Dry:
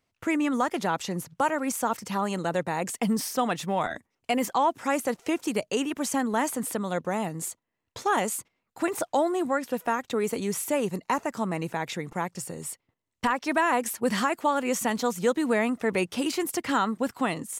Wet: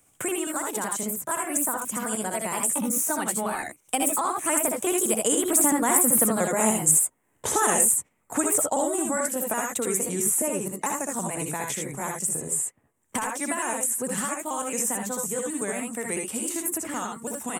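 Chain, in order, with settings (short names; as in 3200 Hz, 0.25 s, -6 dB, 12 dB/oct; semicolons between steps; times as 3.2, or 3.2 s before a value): trilling pitch shifter +2 st, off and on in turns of 0.102 s; Doppler pass-by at 6.58, 29 m/s, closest 23 m; resonant high shelf 6200 Hz +11 dB, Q 3; on a send: early reflections 64 ms -5 dB, 78 ms -4.5 dB; on the sum: three-band squash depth 70%; gain +8 dB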